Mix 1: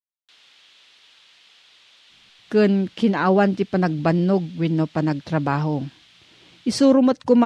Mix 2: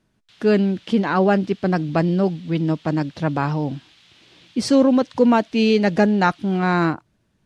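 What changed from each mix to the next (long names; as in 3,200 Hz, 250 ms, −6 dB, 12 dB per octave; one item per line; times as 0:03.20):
speech: entry −2.10 s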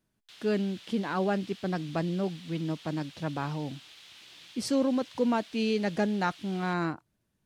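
speech −11.5 dB
master: remove high-frequency loss of the air 53 metres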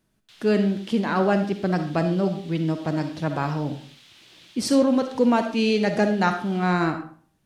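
speech +4.0 dB
reverb: on, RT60 0.45 s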